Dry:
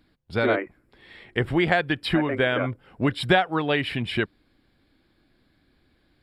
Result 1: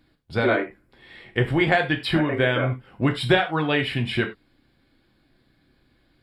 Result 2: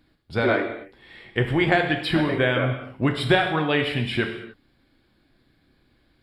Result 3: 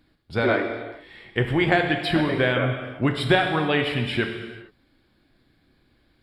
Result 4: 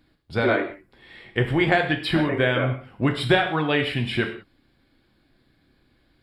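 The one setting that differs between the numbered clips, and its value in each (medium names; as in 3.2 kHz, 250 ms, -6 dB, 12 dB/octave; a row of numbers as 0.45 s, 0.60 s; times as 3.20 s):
gated-style reverb, gate: 120 ms, 320 ms, 480 ms, 210 ms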